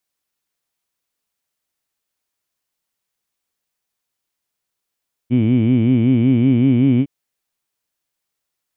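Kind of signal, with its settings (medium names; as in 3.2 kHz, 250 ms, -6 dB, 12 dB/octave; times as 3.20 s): formant-synthesis vowel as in heed, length 1.76 s, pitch 116 Hz, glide +2 st, vibrato depth 1.45 st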